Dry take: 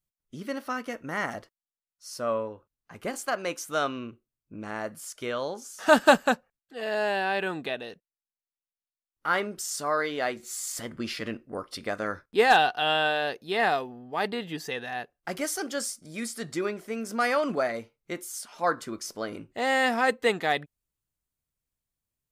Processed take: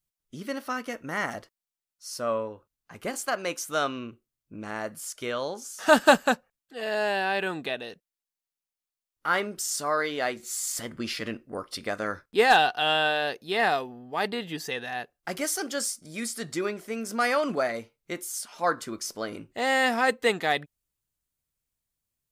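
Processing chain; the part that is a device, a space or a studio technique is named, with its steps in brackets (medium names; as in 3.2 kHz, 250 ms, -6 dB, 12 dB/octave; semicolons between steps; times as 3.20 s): exciter from parts (in parallel at -5 dB: high-pass 3.7 kHz 6 dB/octave + saturation -24.5 dBFS, distortion -14 dB)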